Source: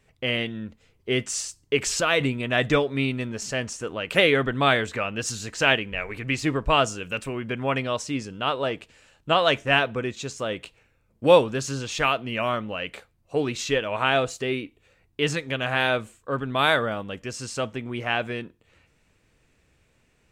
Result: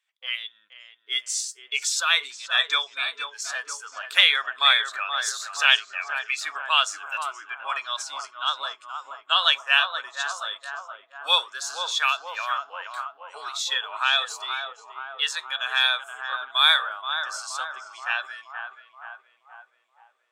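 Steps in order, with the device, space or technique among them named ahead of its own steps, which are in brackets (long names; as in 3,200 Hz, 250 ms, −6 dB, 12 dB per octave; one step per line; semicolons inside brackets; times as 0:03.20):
0:12.87–0:13.49: comb filter 4.8 ms, depth 56%
headphones lying on a table (high-pass filter 1,100 Hz 24 dB per octave; parametric band 3,400 Hz +12 dB 0.22 octaves)
feedback echo with a low-pass in the loop 476 ms, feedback 74%, low-pass 1,800 Hz, level −5 dB
noise reduction from a noise print of the clip's start 14 dB
low-shelf EQ 300 Hz +10 dB
level +1.5 dB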